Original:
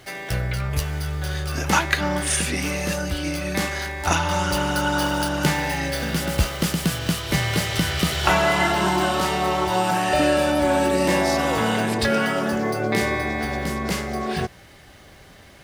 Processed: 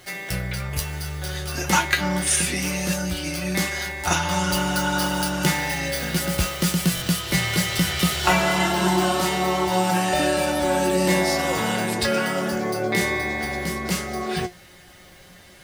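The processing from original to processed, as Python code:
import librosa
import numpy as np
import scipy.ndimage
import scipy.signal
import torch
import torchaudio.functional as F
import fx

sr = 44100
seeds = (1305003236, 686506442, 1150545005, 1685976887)

y = fx.high_shelf(x, sr, hz=4500.0, db=6.0)
y = fx.comb_fb(y, sr, f0_hz=180.0, decay_s=0.16, harmonics='all', damping=0.0, mix_pct=80)
y = fx.buffer_glitch(y, sr, at_s=(6.95,), block=1024, repeats=2)
y = y * librosa.db_to_amplitude(6.0)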